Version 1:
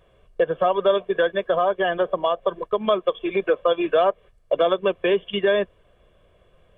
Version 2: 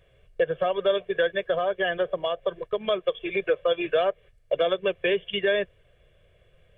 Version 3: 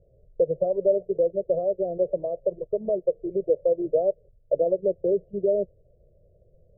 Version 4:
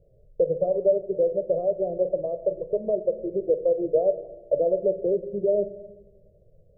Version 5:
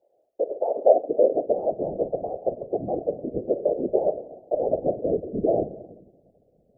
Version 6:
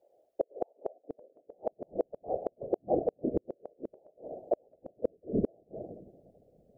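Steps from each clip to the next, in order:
ten-band graphic EQ 125 Hz +6 dB, 250 Hz -11 dB, 500 Hz +3 dB, 1 kHz -11 dB, 2 kHz +6 dB; trim -2 dB
elliptic low-pass 610 Hz, stop band 60 dB; trim +2.5 dB
simulated room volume 570 m³, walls mixed, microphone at 0.43 m
high-pass sweep 750 Hz -> 200 Hz, 0.76–1.79 s; whisper effect; trim -2.5 dB
inverted gate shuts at -16 dBFS, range -39 dB

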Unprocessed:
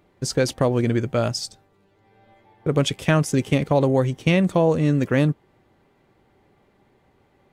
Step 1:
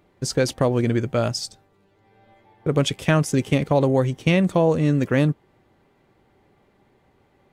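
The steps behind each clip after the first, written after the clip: no audible change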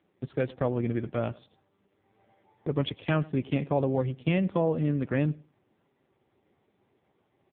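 feedback delay 99 ms, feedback 21%, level -22 dB; trim -7 dB; AMR-NB 5.9 kbps 8 kHz

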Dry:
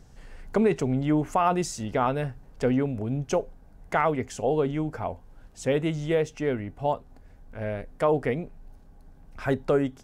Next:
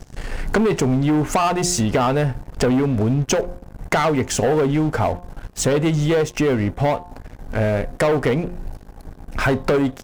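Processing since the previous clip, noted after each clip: waveshaping leveller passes 3; compression, threshold -23 dBFS, peak gain reduction 9 dB; de-hum 177.1 Hz, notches 6; trim +7 dB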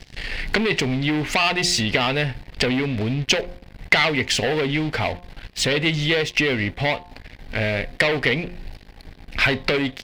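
high-order bell 3 kHz +15 dB; trim -5 dB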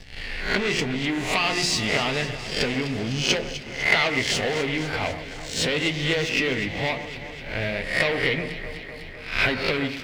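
reverse spectral sustain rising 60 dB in 0.50 s; flange 0.85 Hz, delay 9.6 ms, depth 6.4 ms, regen -47%; on a send: echo whose repeats swap between lows and highs 126 ms, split 2.1 kHz, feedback 84%, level -11 dB; on the sum: trim -1.5 dB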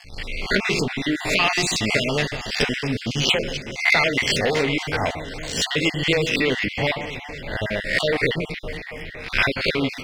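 random holes in the spectrogram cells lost 35%; trim +4.5 dB

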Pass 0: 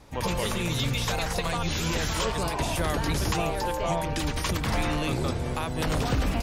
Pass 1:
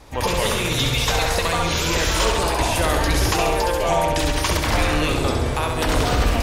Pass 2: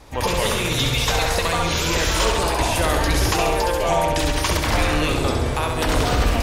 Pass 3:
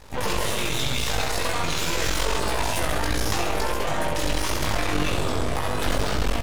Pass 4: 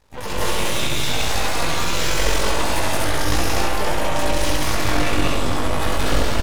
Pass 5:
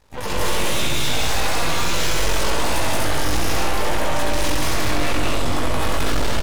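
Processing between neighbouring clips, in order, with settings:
peaking EQ 170 Hz -8.5 dB 0.95 oct; flutter echo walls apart 11.4 m, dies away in 0.84 s; trim +7 dB
no audible change
peak limiter -15 dBFS, peak gain reduction 7.5 dB; half-wave rectifier; doubling 20 ms -4 dB; trim +1.5 dB
on a send: loudspeakers at several distances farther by 60 m -1 dB, 84 m -1 dB; on the sum: upward expansion 1.5:1, over -41 dBFS; trim +1.5 dB
hard clipper -14 dBFS, distortion -13 dB; trim +2 dB

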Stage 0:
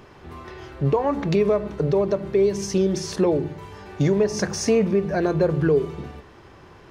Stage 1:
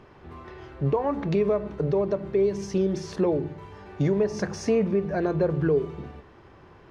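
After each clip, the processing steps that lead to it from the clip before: low-pass 2.6 kHz 6 dB/octave; trim -3.5 dB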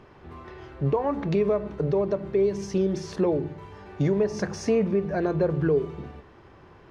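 no audible change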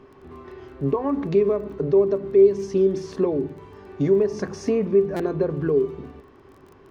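small resonant body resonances 270/390/1100 Hz, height 12 dB, ringing for 95 ms; crackle 19 per s -40 dBFS; buffer glitch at 5.16 s, samples 256, times 5; trim -2.5 dB

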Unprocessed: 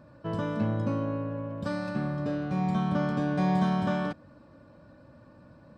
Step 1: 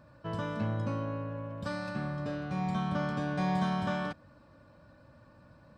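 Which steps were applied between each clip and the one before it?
peaking EQ 300 Hz -7 dB 2.3 oct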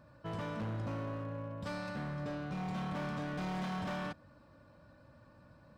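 hard clipper -33 dBFS, distortion -9 dB; trim -2.5 dB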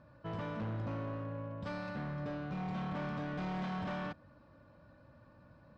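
distance through air 130 m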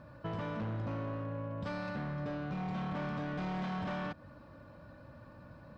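compression, threshold -43 dBFS, peak gain reduction 6 dB; trim +7 dB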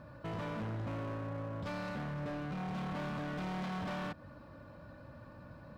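hard clipper -38 dBFS, distortion -15 dB; trim +1 dB

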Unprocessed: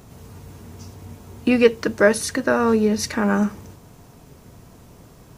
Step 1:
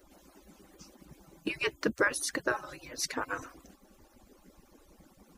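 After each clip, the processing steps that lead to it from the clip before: harmonic-percussive separation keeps percussive; trim -6.5 dB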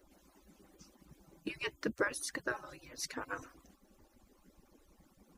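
phaser 1.5 Hz, delay 1.1 ms, feedback 25%; trim -7 dB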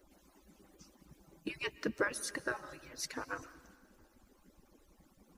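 algorithmic reverb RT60 2.1 s, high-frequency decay 0.9×, pre-delay 95 ms, DRR 18 dB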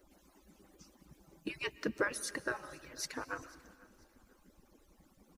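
feedback delay 493 ms, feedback 34%, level -22.5 dB

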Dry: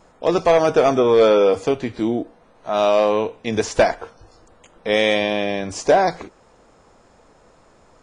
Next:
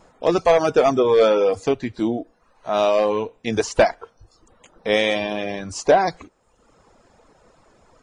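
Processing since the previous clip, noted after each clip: reverb removal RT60 0.86 s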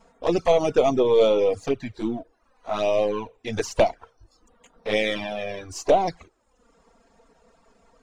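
partial rectifier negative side -3 dB; touch-sensitive flanger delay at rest 4.5 ms, full sweep at -14.5 dBFS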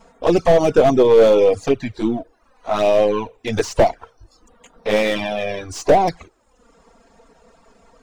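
slew-rate limiter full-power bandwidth 100 Hz; trim +7 dB

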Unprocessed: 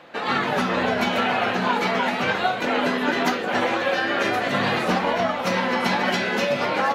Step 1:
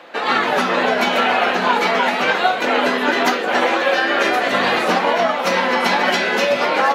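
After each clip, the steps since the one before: high-pass 290 Hz 12 dB/octave; trim +6 dB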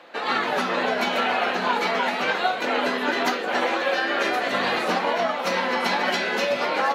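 peaking EQ 4.2 kHz +3 dB 0.2 oct; trim -6.5 dB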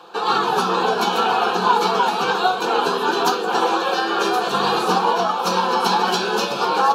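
static phaser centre 400 Hz, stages 8; trim +8.5 dB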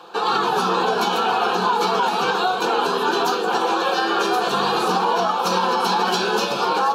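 peak limiter -11.5 dBFS, peak gain reduction 7 dB; trim +1 dB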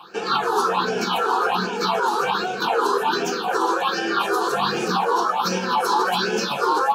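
phase shifter stages 6, 1.3 Hz, lowest notch 160–1100 Hz; trim +2 dB

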